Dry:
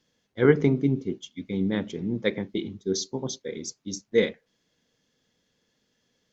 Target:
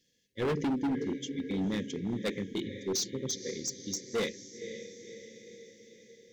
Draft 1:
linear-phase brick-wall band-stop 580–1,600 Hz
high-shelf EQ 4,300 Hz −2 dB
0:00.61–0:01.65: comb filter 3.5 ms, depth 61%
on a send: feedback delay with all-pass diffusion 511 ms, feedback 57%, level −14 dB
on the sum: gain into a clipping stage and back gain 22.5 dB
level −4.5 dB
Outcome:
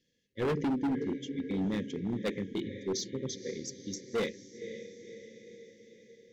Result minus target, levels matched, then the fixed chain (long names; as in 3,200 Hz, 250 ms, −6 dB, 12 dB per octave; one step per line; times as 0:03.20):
8,000 Hz band −5.5 dB
linear-phase brick-wall band-stop 580–1,600 Hz
high-shelf EQ 4,300 Hz +9.5 dB
0:00.61–0:01.65: comb filter 3.5 ms, depth 61%
on a send: feedback delay with all-pass diffusion 511 ms, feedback 57%, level −14 dB
on the sum: gain into a clipping stage and back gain 22.5 dB
level −4.5 dB